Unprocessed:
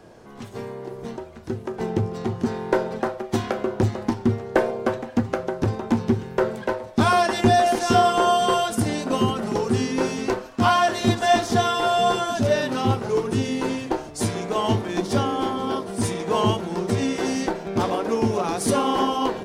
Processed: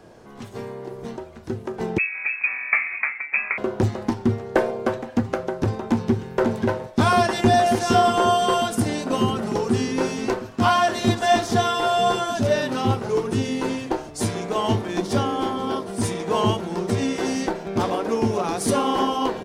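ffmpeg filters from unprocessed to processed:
-filter_complex "[0:a]asettb=1/sr,asplit=3[s0][s1][s2];[s0]atrim=end=1.984[s3];[s1]atrim=start=1.98:end=3.58,asetpts=PTS-STARTPTS,afade=t=in:d=0.004:c=qsin,afade=t=out:st=1.596:d=0.004:c=qsin,lowpass=f=2300:t=q:w=0.5098,lowpass=f=2300:t=q:w=0.6013,lowpass=f=2300:t=q:w=0.9,lowpass=f=2300:t=q:w=2.563,afreqshift=-2700[s4];[s2]atrim=start=3.576[s5];[s3][s4]acrossfade=d=0.004:c1=hsin:c2=qsin[s6];[s6][s5]acrossfade=d=0.004:c1=qsin:c2=hsin,asplit=2[s7][s8];[s8]afade=t=in:st=5.9:d=0.01,afade=t=out:st=6.33:d=0.01,aecho=0:1:540|1080|1620|2160|2700|3240|3780|4320|4860|5400|5940|6480:0.668344|0.534675|0.42774|0.342192|0.273754|0.219003|0.175202|0.140162|0.11213|0.0897036|0.0717629|0.0574103[s9];[s7][s9]amix=inputs=2:normalize=0"

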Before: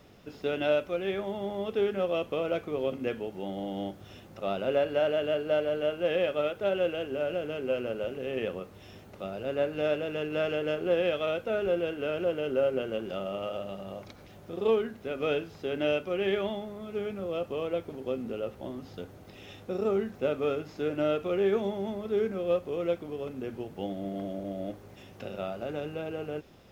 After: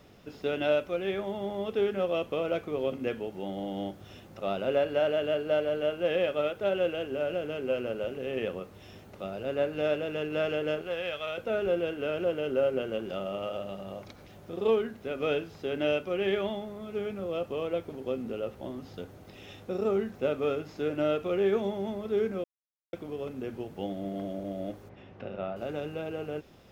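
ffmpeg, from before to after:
-filter_complex "[0:a]asettb=1/sr,asplit=3[s0][s1][s2];[s0]atrim=end=10.814[s3];[s1]atrim=start=10.81:end=11.38,asetpts=PTS-STARTPTS,afade=t=in:d=0.004:c=qsin,afade=t=out:st=0.566:d=0.004:c=qsin,equalizer=f=280:t=o:w=2.2:g=-13[s4];[s2]atrim=start=11.376[s5];[s3][s4]acrossfade=d=0.004:c1=hsin:c2=qsin[s6];[s6][s5]acrossfade=d=0.004:c1=qsin:c2=hsin,asplit=3[s7][s8][s9];[s7]afade=t=out:st=24.88:d=0.02[s10];[s8]lowpass=2400,afade=t=in:st=24.88:d=0.02,afade=t=out:st=25.55:d=0.02[s11];[s9]afade=t=in:st=25.55:d=0.02[s12];[s10][s11][s12]amix=inputs=3:normalize=0,asplit=3[s13][s14][s15];[s13]atrim=end=22.44,asetpts=PTS-STARTPTS,afade=t=out:st=22.436:d=0.004:c=hsin[s16];[s14]atrim=start=22.44:end=22.93,asetpts=PTS-STARTPTS,volume=0[s17];[s15]atrim=start=22.93,asetpts=PTS-STARTPTS,afade=t=in:d=0.004:c=hsin[s18];[s16][s17][s18]concat=n=3:v=0:a=1"

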